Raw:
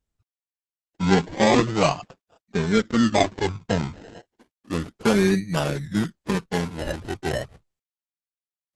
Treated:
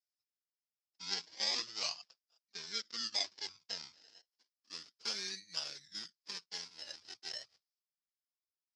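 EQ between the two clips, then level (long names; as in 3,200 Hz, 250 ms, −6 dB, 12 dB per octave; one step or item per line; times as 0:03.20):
resonant band-pass 5,100 Hz, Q 7
high-frequency loss of the air 52 metres
+6.0 dB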